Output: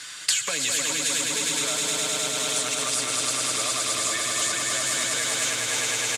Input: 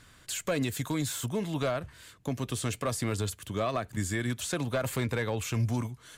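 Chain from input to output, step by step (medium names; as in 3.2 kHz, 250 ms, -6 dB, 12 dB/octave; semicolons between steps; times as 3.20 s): comb 6.7 ms, depth 56%; short-mantissa float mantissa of 2-bit; echo with a slow build-up 103 ms, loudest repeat 5, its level -4 dB; compression, threshold -26 dBFS, peak gain reduction 9 dB; frequency weighting ITU-R 468; gate with hold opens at -22 dBFS; three bands compressed up and down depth 100%; trim +2 dB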